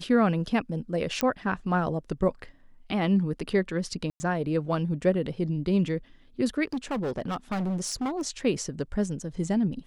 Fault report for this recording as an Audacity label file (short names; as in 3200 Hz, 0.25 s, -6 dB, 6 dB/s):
1.210000	1.210000	pop -10 dBFS
4.100000	4.200000	gap 0.1 s
6.730000	8.220000	clipped -26 dBFS